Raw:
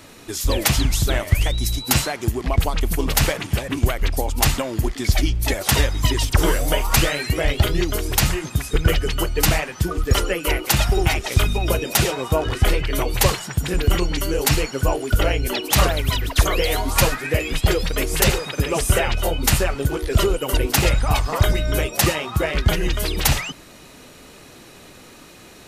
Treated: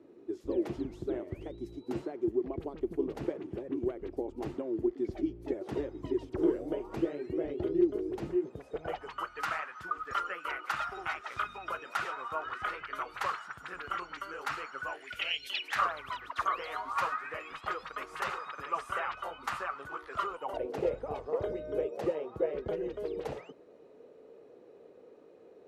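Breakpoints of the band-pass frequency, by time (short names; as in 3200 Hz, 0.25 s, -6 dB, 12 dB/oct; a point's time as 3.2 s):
band-pass, Q 5.3
8.39 s 360 Hz
9.27 s 1300 Hz
14.8 s 1300 Hz
15.47 s 3700 Hz
15.84 s 1200 Hz
20.3 s 1200 Hz
20.74 s 460 Hz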